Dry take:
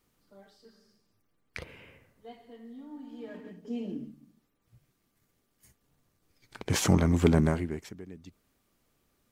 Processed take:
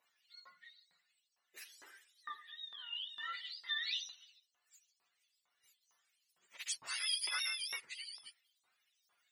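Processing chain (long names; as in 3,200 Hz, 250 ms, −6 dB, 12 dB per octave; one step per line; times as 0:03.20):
frequency axis turned over on the octave scale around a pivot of 920 Hz
downward compressor 8 to 1, threshold −37 dBFS, peak gain reduction 19 dB
auto-filter high-pass saw up 2.2 Hz 950–6,000 Hz
level +1 dB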